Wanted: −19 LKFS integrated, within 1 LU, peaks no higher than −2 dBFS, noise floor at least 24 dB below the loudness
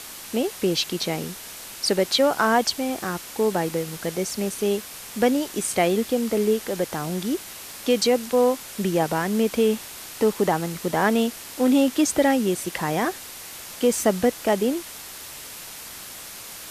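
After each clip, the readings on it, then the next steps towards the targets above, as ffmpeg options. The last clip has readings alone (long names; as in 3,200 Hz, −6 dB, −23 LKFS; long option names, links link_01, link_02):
background noise floor −39 dBFS; target noise floor −48 dBFS; integrated loudness −23.5 LKFS; sample peak −7.0 dBFS; target loudness −19.0 LKFS
→ -af "afftdn=noise_reduction=9:noise_floor=-39"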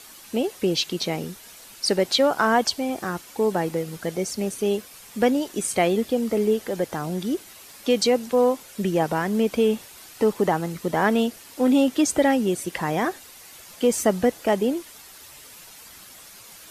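background noise floor −46 dBFS; target noise floor −48 dBFS
→ -af "afftdn=noise_reduction=6:noise_floor=-46"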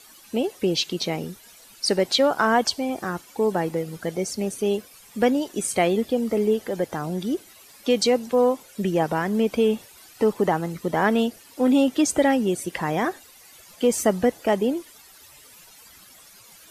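background noise floor −50 dBFS; integrated loudness −23.5 LKFS; sample peak −7.0 dBFS; target loudness −19.0 LKFS
→ -af "volume=4.5dB"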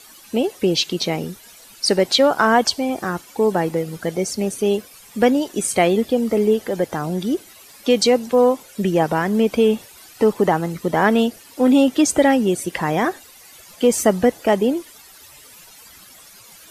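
integrated loudness −19.0 LKFS; sample peak −2.5 dBFS; background noise floor −45 dBFS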